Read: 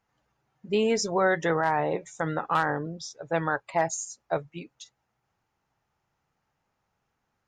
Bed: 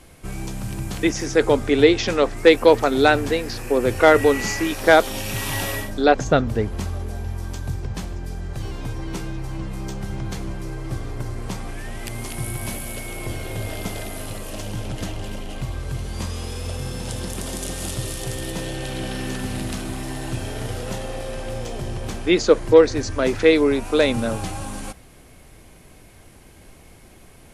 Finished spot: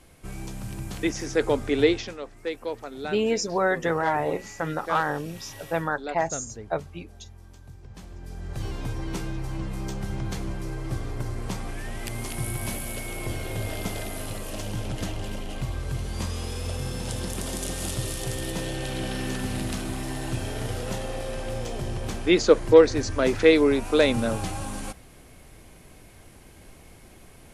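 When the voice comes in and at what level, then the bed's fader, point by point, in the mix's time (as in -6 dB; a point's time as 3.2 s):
2.40 s, 0.0 dB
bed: 1.93 s -6 dB
2.18 s -18.5 dB
7.76 s -18.5 dB
8.62 s -2 dB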